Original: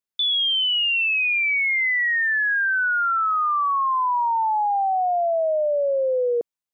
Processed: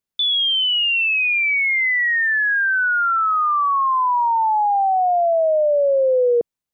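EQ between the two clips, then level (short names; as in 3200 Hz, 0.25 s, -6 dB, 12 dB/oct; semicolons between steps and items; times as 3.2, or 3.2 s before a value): low shelf 350 Hz +8.5 dB; +2.5 dB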